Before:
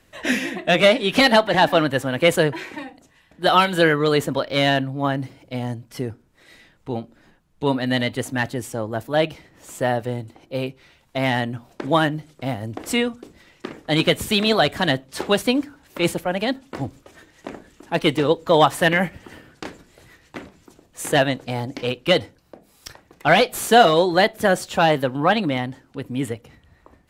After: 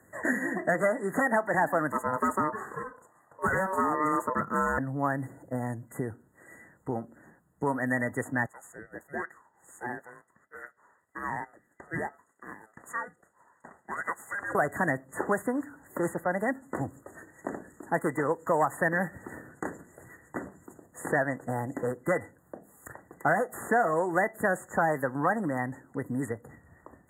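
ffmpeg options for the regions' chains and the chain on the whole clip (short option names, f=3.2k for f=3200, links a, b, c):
-filter_complex "[0:a]asettb=1/sr,asplit=3[a][b][c];[a]atrim=end=1.924[d];[b]atrim=start=1.92:end=4.78,asetpts=PTS-STARTPTS,afade=t=in:d=0.004:c=qsin,afade=t=out:st=2.856:d=0.004:c=qsin,asoftclip=type=hard:threshold=-13.5dB,aeval=exprs='val(0)*sin(2*PI*760*n/s)':c=same[e];[c]atrim=start=4.776[f];[d][e]acrossfade=d=0.004:c1=hsin:c2=qsin[g];[g][f]acrossfade=d=0.004:c1=qsin:c2=hsin,asettb=1/sr,asplit=3[h][i][j];[h]atrim=end=8.464[k];[i]atrim=start=8.46:end=14.55,asetpts=PTS-STARTPTS,afade=t=in:d=0.004:c=qsin,afade=t=out:st=6.086:d=0.004:c=qsin,highpass=1.4k,aeval=exprs='val(0)*sin(2*PI*990*n/s)':c=same,aemphasis=mode=reproduction:type=50kf[l];[j]atrim=start=14.546[m];[k][l]acrossfade=d=0.004:c1=hsin:c2=qsin[n];[n][m]acrossfade=d=0.004:c1=qsin:c2=hsin,afftfilt=real='re*(1-between(b*sr/4096,2000,6600))':imag='im*(1-between(b*sr/4096,2000,6600))':win_size=4096:overlap=0.75,acrossover=split=920|3200[o][p][q];[o]acompressor=threshold=-29dB:ratio=4[r];[p]acompressor=threshold=-28dB:ratio=4[s];[q]acompressor=threshold=-48dB:ratio=4[t];[r][s][t]amix=inputs=3:normalize=0,highpass=95"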